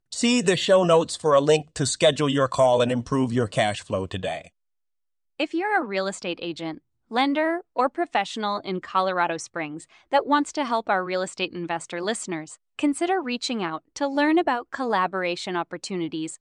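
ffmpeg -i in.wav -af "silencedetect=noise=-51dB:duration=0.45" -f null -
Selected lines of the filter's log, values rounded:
silence_start: 4.49
silence_end: 5.39 | silence_duration: 0.90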